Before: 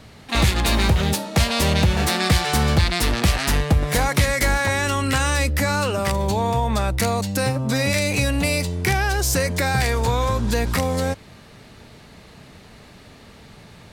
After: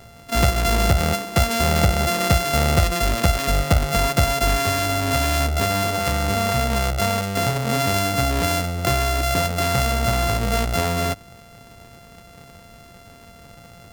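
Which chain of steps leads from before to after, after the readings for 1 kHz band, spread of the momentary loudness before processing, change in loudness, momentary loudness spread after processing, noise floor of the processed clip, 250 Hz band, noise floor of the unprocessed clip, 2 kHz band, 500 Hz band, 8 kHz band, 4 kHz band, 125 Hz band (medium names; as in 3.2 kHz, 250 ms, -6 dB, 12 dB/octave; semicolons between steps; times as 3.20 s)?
+2.0 dB, 3 LU, 0.0 dB, 3 LU, -46 dBFS, -1.5 dB, -46 dBFS, -2.0 dB, +1.5 dB, 0.0 dB, -0.5 dB, -0.5 dB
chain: sorted samples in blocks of 64 samples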